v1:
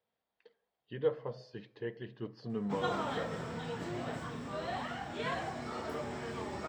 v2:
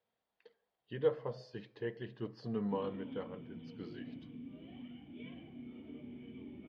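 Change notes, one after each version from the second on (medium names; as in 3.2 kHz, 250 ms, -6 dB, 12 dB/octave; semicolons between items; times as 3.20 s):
background: add cascade formant filter i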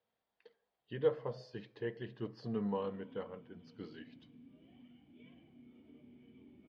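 background -10.0 dB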